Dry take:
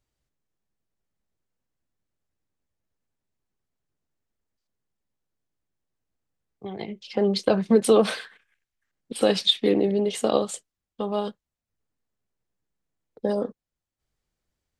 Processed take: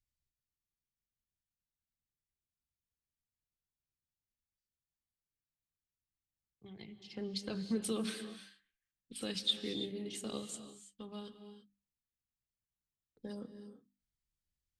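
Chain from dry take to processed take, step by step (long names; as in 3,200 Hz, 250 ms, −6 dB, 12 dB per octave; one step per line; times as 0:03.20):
guitar amp tone stack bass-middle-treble 6-0-2
mains-hum notches 50/100/150/200/250/300 Hz
reverb whose tail is shaped and stops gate 360 ms rising, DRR 10 dB
level +4 dB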